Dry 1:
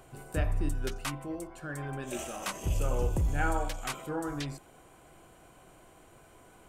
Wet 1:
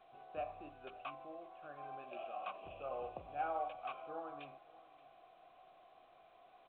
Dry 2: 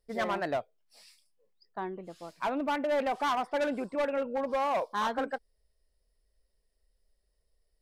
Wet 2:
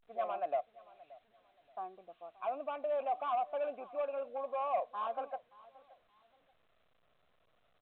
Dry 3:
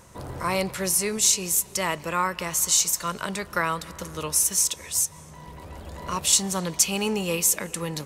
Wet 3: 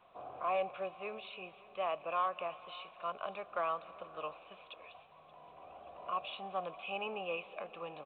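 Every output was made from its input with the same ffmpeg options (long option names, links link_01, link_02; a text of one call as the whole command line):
ffmpeg -i in.wav -filter_complex "[0:a]adynamicequalizer=threshold=0.00891:dfrequency=570:dqfactor=4.5:tfrequency=570:tqfactor=4.5:attack=5:release=100:ratio=0.375:range=2:mode=boostabove:tftype=bell,asplit=3[link_01][link_02][link_03];[link_01]bandpass=frequency=730:width_type=q:width=8,volume=0dB[link_04];[link_02]bandpass=frequency=1090:width_type=q:width=8,volume=-6dB[link_05];[link_03]bandpass=frequency=2440:width_type=q:width=8,volume=-9dB[link_06];[link_04][link_05][link_06]amix=inputs=3:normalize=0,asoftclip=type=tanh:threshold=-24.5dB,asplit=2[link_07][link_08];[link_08]aecho=0:1:577|1154:0.0841|0.021[link_09];[link_07][link_09]amix=inputs=2:normalize=0,volume=1.5dB" -ar 8000 -c:a pcm_alaw out.wav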